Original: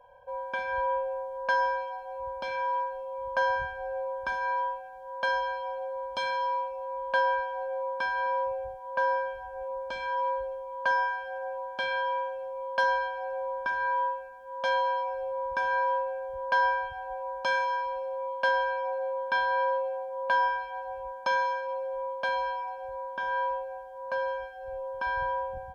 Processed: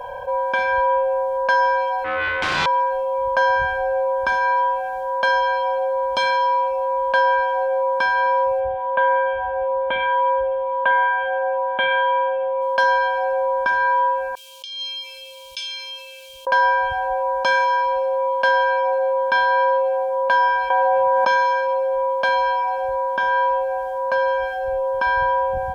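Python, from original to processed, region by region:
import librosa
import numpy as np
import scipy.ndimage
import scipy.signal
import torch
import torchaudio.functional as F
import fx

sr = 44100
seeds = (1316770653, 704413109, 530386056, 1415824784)

y = fx.chain(x, sr, fx.self_delay(depth_ms=0.93),
    fx.lowpass(hz=3200.0, slope=12),
    fx.room_flutter(wall_m=6.8, rt60_s=0.32), at=(2.04, 2.66))
y = fx.chain(y, sr, fx.highpass(hz=43.0, slope=12),
    fx.resample_bad(factor=6, down='none', up='filtered'), at=(8.6, 12.62))
y = fx.chain(y, sr, fx.ellip_highpass(hz=2800.0, order=4, stop_db=40),
    fx.high_shelf(hz=4200.0, db=-5.5),
    fx.over_compress(threshold_db=-50.0, ratio=-0.5), at=(14.35, 16.47))
y = fx.chain(y, sr, fx.highpass(hz=120.0, slope=24),
    fx.high_shelf(hz=4000.0, db=-10.5),
    fx.env_flatten(amount_pct=100), at=(20.7, 21.28))
y = fx.low_shelf(y, sr, hz=180.0, db=-3.5)
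y = fx.env_flatten(y, sr, amount_pct=50)
y = F.gain(torch.from_numpy(y), 7.5).numpy()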